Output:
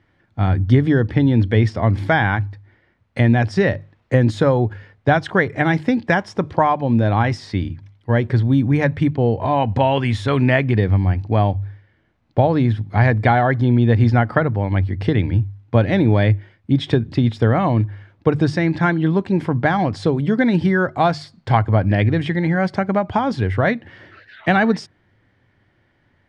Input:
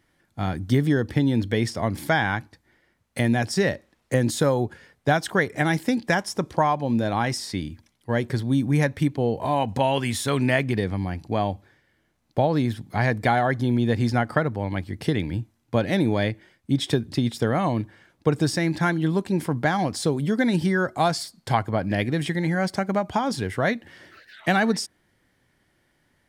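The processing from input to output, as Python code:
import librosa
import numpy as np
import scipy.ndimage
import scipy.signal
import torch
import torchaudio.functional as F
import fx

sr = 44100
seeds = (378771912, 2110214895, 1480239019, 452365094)

y = scipy.signal.sosfilt(scipy.signal.butter(2, 3000.0, 'lowpass', fs=sr, output='sos'), x)
y = fx.peak_eq(y, sr, hz=100.0, db=13.5, octaves=0.36)
y = fx.hum_notches(y, sr, base_hz=50, count=3)
y = y * librosa.db_to_amplitude(5.0)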